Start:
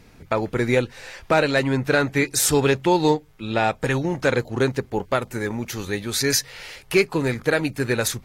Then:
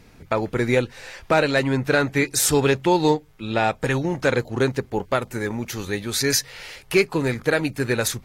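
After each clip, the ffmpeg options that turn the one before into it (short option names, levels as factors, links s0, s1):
-af anull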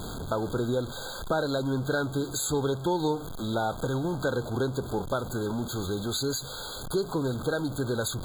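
-af "aeval=exprs='val(0)+0.5*0.0562*sgn(val(0))':c=same,acompressor=threshold=0.0891:ratio=2,afftfilt=real='re*eq(mod(floor(b*sr/1024/1600),2),0)':imag='im*eq(mod(floor(b*sr/1024/1600),2),0)':win_size=1024:overlap=0.75,volume=0.531"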